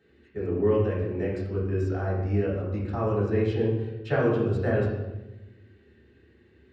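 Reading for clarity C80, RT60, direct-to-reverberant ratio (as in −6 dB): 4.0 dB, 1.1 s, −10.0 dB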